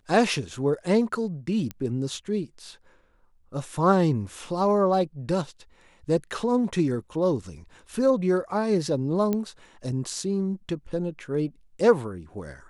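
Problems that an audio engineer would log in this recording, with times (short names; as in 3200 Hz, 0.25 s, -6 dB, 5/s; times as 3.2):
1.71 pop -18 dBFS
9.33 pop -14 dBFS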